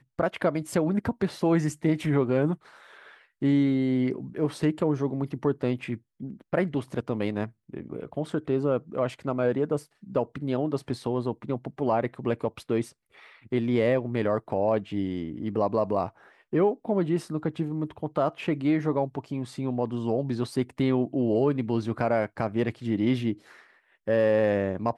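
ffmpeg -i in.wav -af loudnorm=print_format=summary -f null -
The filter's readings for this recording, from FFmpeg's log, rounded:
Input Integrated:    -27.4 LUFS
Input True Peak:     -12.2 dBTP
Input LRA:             2.9 LU
Input Threshold:     -37.8 LUFS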